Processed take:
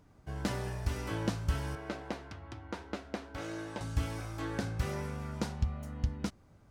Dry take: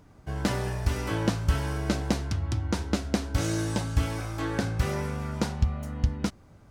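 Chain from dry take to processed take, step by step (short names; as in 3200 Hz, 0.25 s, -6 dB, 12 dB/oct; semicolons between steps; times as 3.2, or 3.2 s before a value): 1.75–3.81 tone controls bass -13 dB, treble -13 dB; gain -7 dB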